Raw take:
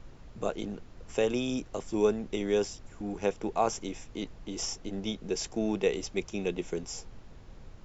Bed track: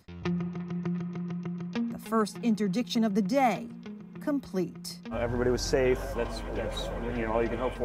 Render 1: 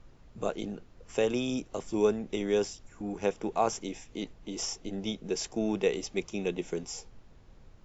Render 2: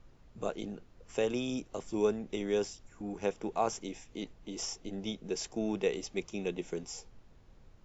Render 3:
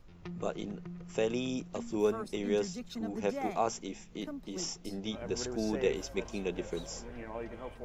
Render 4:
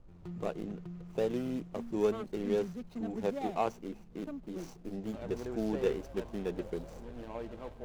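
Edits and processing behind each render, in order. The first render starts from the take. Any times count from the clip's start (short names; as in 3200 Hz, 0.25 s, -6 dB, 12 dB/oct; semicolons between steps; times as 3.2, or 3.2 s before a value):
noise print and reduce 6 dB
gain -3.5 dB
add bed track -13 dB
median filter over 25 samples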